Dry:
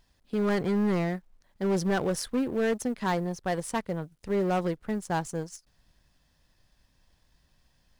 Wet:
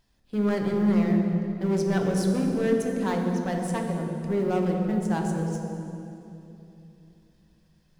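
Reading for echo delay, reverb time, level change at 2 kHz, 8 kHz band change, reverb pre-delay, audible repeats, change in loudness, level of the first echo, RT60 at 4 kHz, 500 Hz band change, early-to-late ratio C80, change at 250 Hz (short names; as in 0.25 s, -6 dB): none, 2.9 s, -1.0 dB, -1.5 dB, 8 ms, none, +3.5 dB, none, 2.2 s, +2.5 dB, 3.5 dB, +5.5 dB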